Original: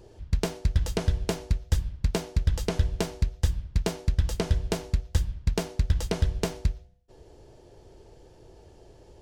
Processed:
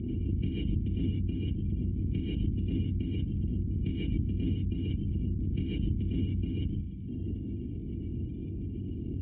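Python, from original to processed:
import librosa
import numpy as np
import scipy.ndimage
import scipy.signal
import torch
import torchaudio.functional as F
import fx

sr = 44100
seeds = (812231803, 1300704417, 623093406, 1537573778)

y = fx.bin_compress(x, sr, power=0.2)
y = fx.dereverb_blind(y, sr, rt60_s=0.94)
y = fx.spec_gate(y, sr, threshold_db=-25, keep='strong')
y = scipy.signal.sosfilt(scipy.signal.butter(2, 62.0, 'highpass', fs=sr, output='sos'), y)
y = fx.band_shelf(y, sr, hz=680.0, db=-14.5, octaves=1.7)
y = fx.dmg_crackle(y, sr, seeds[0], per_s=36.0, level_db=-36.0)
y = fx.formant_cascade(y, sr, vowel='i')
y = fx.rev_gated(y, sr, seeds[1], gate_ms=160, shape='rising', drr_db=-2.5)
y = fx.pre_swell(y, sr, db_per_s=26.0)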